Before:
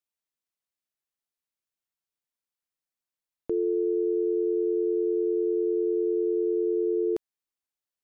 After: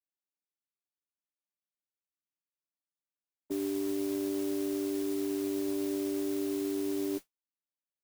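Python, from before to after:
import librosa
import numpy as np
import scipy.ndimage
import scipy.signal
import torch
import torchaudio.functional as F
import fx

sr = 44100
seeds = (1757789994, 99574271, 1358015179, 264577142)

y = fx.chord_vocoder(x, sr, chord='bare fifth', root=55)
y = fx.cheby_harmonics(y, sr, harmonics=(2, 3), levels_db=(-25, -29), full_scale_db=-20.0)
y = fx.mod_noise(y, sr, seeds[0], snr_db=14)
y = y * 10.0 ** (-4.5 / 20.0)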